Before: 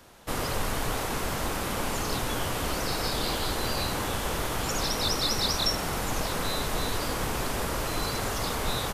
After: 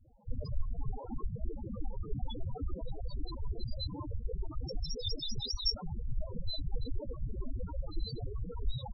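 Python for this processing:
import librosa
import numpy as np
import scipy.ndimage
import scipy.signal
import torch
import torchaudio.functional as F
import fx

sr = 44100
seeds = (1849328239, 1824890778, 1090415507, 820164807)

y = fx.dereverb_blind(x, sr, rt60_s=1.3)
y = fx.low_shelf(y, sr, hz=250.0, db=2.5)
y = fx.spec_topn(y, sr, count=4)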